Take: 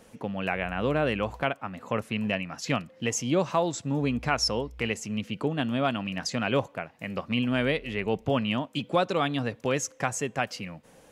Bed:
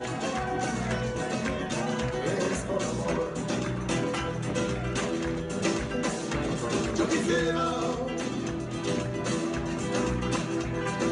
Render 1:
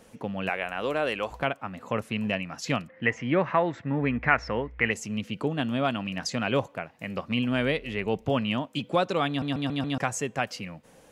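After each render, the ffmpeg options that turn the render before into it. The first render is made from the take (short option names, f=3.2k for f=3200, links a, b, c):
-filter_complex "[0:a]asettb=1/sr,asplit=3[a][b][c];[a]atrim=end=0.494[d];[b]atrim=start=0.49:end=1.31,asetpts=PTS-STARTPTS,afade=t=in:d=0.004:c=qsin,afade=t=out:st=0.816:d=0.004:c=qsin,bass=f=250:g=-14,treble=f=4k:g=6[e];[c]atrim=start=1.306[f];[d][e]acrossfade=d=0.004:c1=hsin:c2=qsin[g];[g][f]acrossfade=d=0.004:c1=qsin:c2=hsin,asettb=1/sr,asplit=3[h][i][j];[h]atrim=end=2.884[k];[i]atrim=start=2.88:end=4.91,asetpts=PTS-STARTPTS,afade=t=in:d=0.004:c=qsin,afade=t=out:st=2.026:d=0.004:c=qsin,lowpass=f=1.9k:t=q:w=4.4[l];[j]atrim=start=4.906[m];[k][l]acrossfade=d=0.004:c1=hsin:c2=qsin[n];[n][m]acrossfade=d=0.004:c1=qsin:c2=hsin,asplit=6[o][p][q][r][s][t];[o]atrim=end=9.422[u];[p]atrim=start=9.278:end=9.422[v];[q]atrim=start=9.278:end=9.422[w];[r]atrim=start=9.278:end=9.422[x];[s]atrim=start=9.278:end=9.422[y];[t]atrim=start=9.978[z];[u][v]acrossfade=d=0.004:c1=hsin:c2=hsin[aa];[aa][w]acrossfade=d=0.004:c1=hsin:c2=hsin[ab];[ab][x]acrossfade=d=0.004:c1=hsin:c2=hsin[ac];[ac][y]acrossfade=d=0.004:c1=hsin:c2=hsin[ad];[ad][z]acrossfade=d=0.004:c1=hsin:c2=hsin"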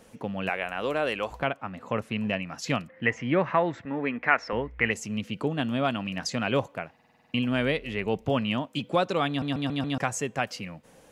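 -filter_complex "[0:a]asettb=1/sr,asplit=3[a][b][c];[a]atrim=end=1.404[d];[b]atrim=start=1.4:end=2.47,asetpts=PTS-STARTPTS,afade=t=in:d=0.004:c=qsin,afade=t=out:st=1.066:d=0.004:c=qsin,highshelf=f=6.7k:g=-8[e];[c]atrim=start=2.466[f];[d][e]acrossfade=d=0.004:c1=hsin:c2=qsin[g];[g][f]acrossfade=d=0.004:c1=qsin:c2=hsin,asettb=1/sr,asplit=3[h][i][j];[h]atrim=end=3.854[k];[i]atrim=start=3.85:end=4.53,asetpts=PTS-STARTPTS,afade=t=in:d=0.004:c=qsin,afade=t=out:st=0.676:d=0.004:c=qsin,highpass=280[l];[j]atrim=start=4.526[m];[k][l]acrossfade=d=0.004:c1=hsin:c2=qsin[n];[n][m]acrossfade=d=0.004:c1=qsin:c2=hsin,asplit=9[o][p][q][r][s][t][u][v][w];[o]atrim=end=6.992[x];[p]atrim=start=6.938:end=6.992[y];[q]atrim=start=6.938:end=6.992[z];[r]atrim=start=6.938:end=6.992[aa];[s]atrim=start=6.938:end=6.992[ab];[t]atrim=start=6.938:end=6.992[ac];[u]atrim=start=6.938:end=6.992[ad];[v]atrim=start=6.938:end=6.992[ae];[w]atrim=start=7.338[af];[x][y]acrossfade=d=0.004:c1=hsin:c2=hsin[ag];[ag][z]acrossfade=d=0.004:c1=hsin:c2=hsin[ah];[ah][aa]acrossfade=d=0.004:c1=hsin:c2=hsin[ai];[ai][ab]acrossfade=d=0.004:c1=hsin:c2=hsin[aj];[aj][ac]acrossfade=d=0.004:c1=hsin:c2=hsin[ak];[ak][ad]acrossfade=d=0.004:c1=hsin:c2=hsin[al];[al][ae]acrossfade=d=0.004:c1=hsin:c2=hsin[am];[am][af]acrossfade=d=0.004:c1=hsin:c2=hsin"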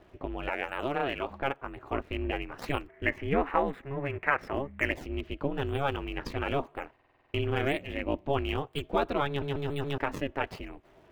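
-filter_complex "[0:a]aeval=exprs='val(0)*sin(2*PI*140*n/s)':c=same,acrossover=split=3800[a][b];[b]acrusher=samples=35:mix=1:aa=0.000001:lfo=1:lforange=56:lforate=1[c];[a][c]amix=inputs=2:normalize=0"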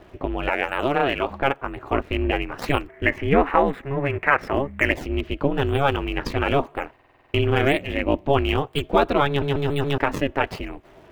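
-af "volume=9.5dB,alimiter=limit=-3dB:level=0:latency=1"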